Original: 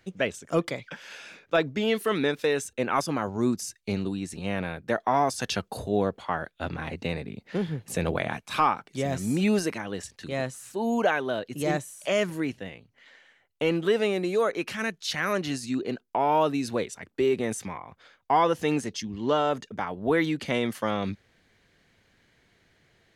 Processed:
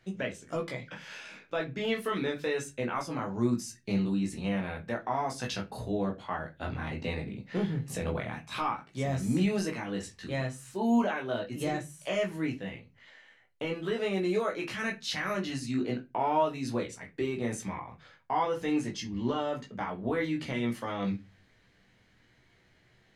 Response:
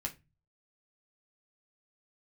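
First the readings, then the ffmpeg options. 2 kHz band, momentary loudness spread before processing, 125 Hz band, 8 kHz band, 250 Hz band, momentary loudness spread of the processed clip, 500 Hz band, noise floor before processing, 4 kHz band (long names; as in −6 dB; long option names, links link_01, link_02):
−5.5 dB, 10 LU, −1.5 dB, −6.0 dB, −2.5 dB, 8 LU, −6.0 dB, −66 dBFS, −5.0 dB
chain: -filter_complex "[0:a]highshelf=frequency=9900:gain=-7.5,alimiter=limit=-19dB:level=0:latency=1:release=476,asplit=2[link_01][link_02];[1:a]atrim=start_sample=2205,adelay=16[link_03];[link_02][link_03]afir=irnorm=-1:irlink=0,volume=0dB[link_04];[link_01][link_04]amix=inputs=2:normalize=0,volume=-4dB"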